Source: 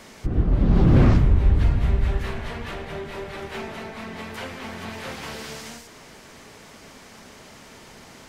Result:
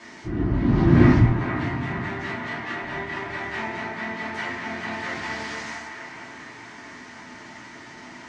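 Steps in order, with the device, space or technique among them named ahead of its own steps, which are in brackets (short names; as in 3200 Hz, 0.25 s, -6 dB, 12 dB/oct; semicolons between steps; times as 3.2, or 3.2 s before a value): car door speaker (speaker cabinet 110–7100 Hz, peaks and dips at 300 Hz +4 dB, 520 Hz -9 dB, 1000 Hz +4 dB, 1900 Hz +9 dB); 1.28–2.83 Chebyshev high-pass 170 Hz, order 2; band-limited delay 0.46 s, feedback 52%, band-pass 1200 Hz, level -4.5 dB; shoebox room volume 120 m³, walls furnished, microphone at 2.8 m; gain -6 dB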